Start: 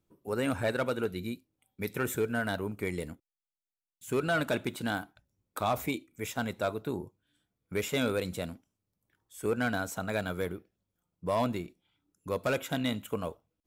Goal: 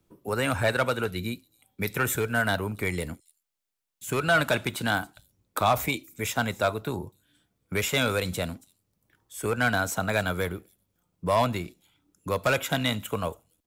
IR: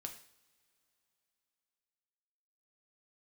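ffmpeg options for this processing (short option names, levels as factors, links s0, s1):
-filter_complex "[0:a]acrossover=split=160|580|4600[s0][s1][s2][s3];[s1]acompressor=threshold=0.00708:ratio=6[s4];[s3]aecho=1:1:277:0.126[s5];[s0][s4][s2][s5]amix=inputs=4:normalize=0,volume=2.66"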